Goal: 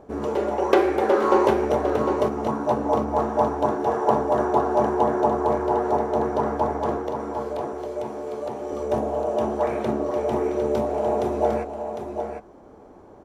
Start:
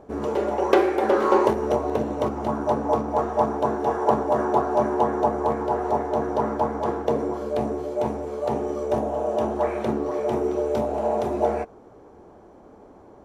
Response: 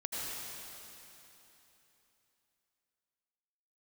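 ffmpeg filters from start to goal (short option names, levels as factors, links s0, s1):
-filter_complex "[0:a]asettb=1/sr,asplit=3[s0][s1][s2];[s0]atrim=end=6.974[s3];[s1]atrim=start=6.97:end=8.72,asetpts=PTS-STARTPTS,afade=t=in:d=0.004:c=qsin,afade=t=out:st=1.746:d=0.004:c=qsin,acrossover=split=170|380|1600[s4][s5][s6][s7];[s4]acompressor=threshold=0.00398:ratio=4[s8];[s5]acompressor=threshold=0.00794:ratio=4[s9];[s6]acompressor=threshold=0.0316:ratio=4[s10];[s7]acompressor=threshold=0.00355:ratio=4[s11];[s8][s9][s10][s11]amix=inputs=4:normalize=0[s12];[s2]atrim=start=8.716[s13];[s3][s12]acrossfade=d=0.004:c1=hsin:c2=qsin[s14];[s14][s13]acrossfade=d=0.004:c1=qsin:c2=hsin,asplit=2[s15][s16];[s16]aecho=0:1:754:0.447[s17];[s15][s17]amix=inputs=2:normalize=0"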